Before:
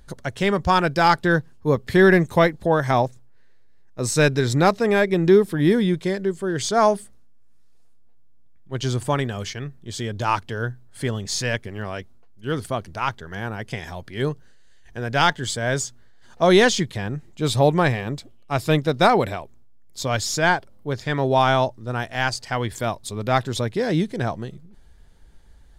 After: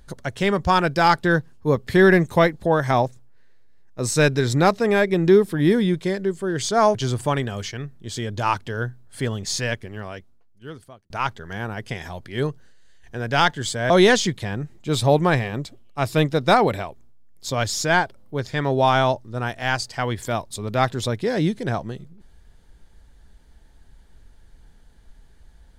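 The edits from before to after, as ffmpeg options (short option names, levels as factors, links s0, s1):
-filter_complex "[0:a]asplit=4[s0][s1][s2][s3];[s0]atrim=end=6.952[s4];[s1]atrim=start=8.768:end=12.92,asetpts=PTS-STARTPTS,afade=t=out:st=2.592:d=1.56[s5];[s2]atrim=start=12.92:end=15.722,asetpts=PTS-STARTPTS,afade=t=in:d=0.004:c=hsin[s6];[s3]atrim=start=16.428[s7];[s5][s6]concat=n=2:v=0:a=1[s8];[s4][s8]acrossfade=d=0.004:c1=hsin:c2=hsin[s9];[s9][s7]acrossfade=d=0.004:c1=hsin:c2=hsin"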